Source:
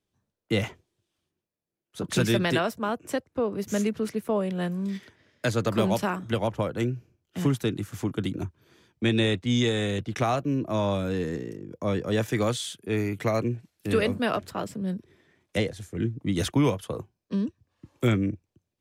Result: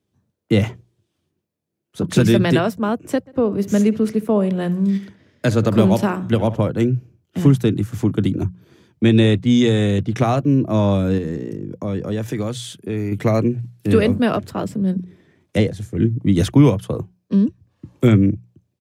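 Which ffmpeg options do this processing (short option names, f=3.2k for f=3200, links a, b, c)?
-filter_complex "[0:a]asplit=3[a][b][c];[a]afade=t=out:st=3.26:d=0.02[d];[b]asplit=2[e][f];[f]adelay=66,lowpass=f=4.3k:p=1,volume=-16.5dB,asplit=2[g][h];[h]adelay=66,lowpass=f=4.3k:p=1,volume=0.39,asplit=2[i][j];[j]adelay=66,lowpass=f=4.3k:p=1,volume=0.39[k];[e][g][i][k]amix=inputs=4:normalize=0,afade=t=in:st=3.26:d=0.02,afade=t=out:st=6.68:d=0.02[l];[c]afade=t=in:st=6.68:d=0.02[m];[d][l][m]amix=inputs=3:normalize=0,asettb=1/sr,asplit=3[n][o][p];[n]atrim=end=11.184[q];[o]atrim=start=11.18:end=13.12,asetpts=PTS-STARTPTS,afade=t=in:d=0.004:c=qsin,afade=t=out:st=1.936:d=0.004:c=qsin,acompressor=threshold=-31dB:ratio=3:attack=3.2:release=140:knee=1:detection=peak[r];[p]atrim=start=13.116[s];[q][r]acrossfade=d=0.004:c1=hsin:c2=qsin[t];[t][s]acrossfade=d=0.004:c1=qsin:c2=hsin,highpass=85,lowshelf=f=390:g=11.5,bandreject=f=60:t=h:w=6,bandreject=f=120:t=h:w=6,bandreject=f=180:t=h:w=6,volume=3dB"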